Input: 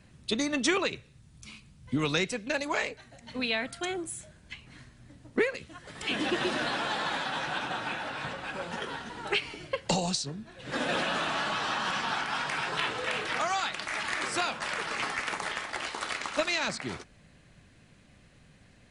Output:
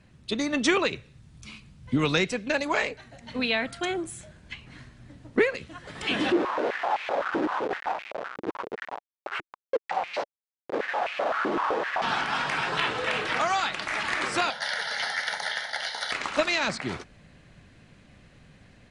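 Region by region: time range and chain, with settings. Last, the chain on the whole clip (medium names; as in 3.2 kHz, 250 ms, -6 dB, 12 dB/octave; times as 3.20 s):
6.32–12.02 s: Schmitt trigger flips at -30 dBFS + tape spacing loss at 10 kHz 21 dB + step-sequenced high-pass 7.8 Hz 330–2400 Hz
14.50–16.12 s: RIAA curve recording + static phaser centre 1.7 kHz, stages 8
whole clip: treble shelf 8 kHz -11.5 dB; level rider gain up to 4.5 dB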